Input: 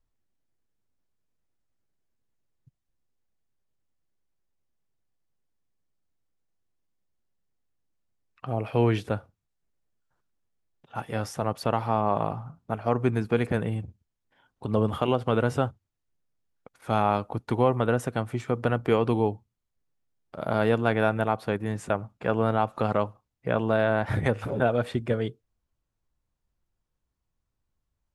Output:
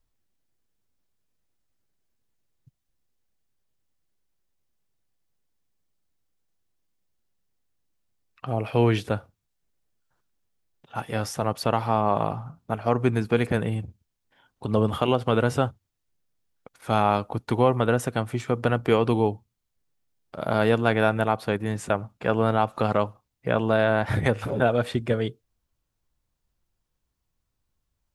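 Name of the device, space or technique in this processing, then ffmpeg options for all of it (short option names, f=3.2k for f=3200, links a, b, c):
presence and air boost: -af "equalizer=f=4.1k:t=o:w=1.8:g=3,highshelf=f=9.9k:g=6,volume=2dB"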